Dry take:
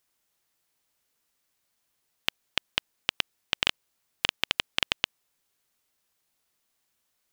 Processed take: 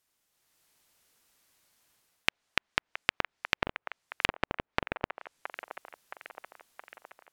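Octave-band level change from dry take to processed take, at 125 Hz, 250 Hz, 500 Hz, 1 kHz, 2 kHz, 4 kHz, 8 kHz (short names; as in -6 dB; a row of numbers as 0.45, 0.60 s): +4.5, +4.5, +5.0, +4.0, 0.0, -8.5, -7.0 dB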